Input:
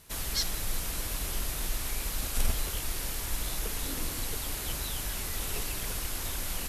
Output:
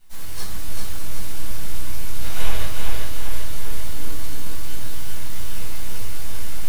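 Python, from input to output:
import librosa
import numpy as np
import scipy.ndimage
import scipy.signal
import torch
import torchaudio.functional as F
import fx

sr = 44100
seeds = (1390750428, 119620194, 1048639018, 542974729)

p1 = fx.spec_box(x, sr, start_s=2.21, length_s=0.43, low_hz=400.0, high_hz=4000.0, gain_db=10)
p2 = np.abs(p1)
p3 = p2 + fx.echo_feedback(p2, sr, ms=393, feedback_pct=55, wet_db=-3.0, dry=0)
p4 = fx.room_shoebox(p3, sr, seeds[0], volume_m3=770.0, walls='furnished', distance_m=7.5)
y = F.gain(torch.from_numpy(p4), -9.5).numpy()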